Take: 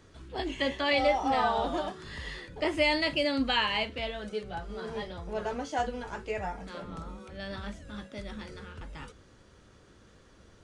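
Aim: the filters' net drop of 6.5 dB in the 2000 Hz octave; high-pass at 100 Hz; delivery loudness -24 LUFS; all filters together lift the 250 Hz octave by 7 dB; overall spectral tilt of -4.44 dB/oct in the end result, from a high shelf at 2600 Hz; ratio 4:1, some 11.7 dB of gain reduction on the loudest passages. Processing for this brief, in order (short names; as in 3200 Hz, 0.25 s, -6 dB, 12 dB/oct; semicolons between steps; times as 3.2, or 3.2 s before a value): HPF 100 Hz; bell 250 Hz +8.5 dB; bell 2000 Hz -5 dB; high shelf 2600 Hz -6.5 dB; compressor 4:1, threshold -31 dBFS; gain +12.5 dB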